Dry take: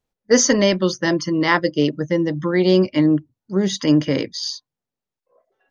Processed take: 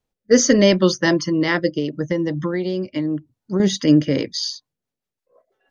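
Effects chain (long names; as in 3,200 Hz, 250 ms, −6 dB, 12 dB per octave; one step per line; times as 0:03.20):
0:01.67–0:03.60: downward compressor 6 to 1, threshold −21 dBFS, peak gain reduction 10 dB
rotating-speaker cabinet horn 0.8 Hz, later 6.3 Hz, at 0:04.07
level +3.5 dB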